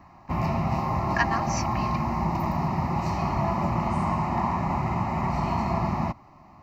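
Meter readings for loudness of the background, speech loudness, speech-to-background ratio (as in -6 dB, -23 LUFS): -27.0 LUFS, -32.0 LUFS, -5.0 dB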